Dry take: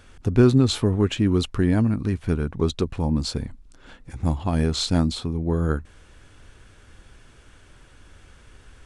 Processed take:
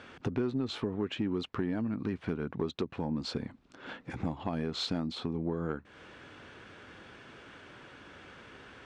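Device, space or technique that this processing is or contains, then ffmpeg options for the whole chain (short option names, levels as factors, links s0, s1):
AM radio: -af "highpass=190,lowpass=3400,acompressor=threshold=0.0178:ratio=5,asoftclip=type=tanh:threshold=0.0631,volume=1.78"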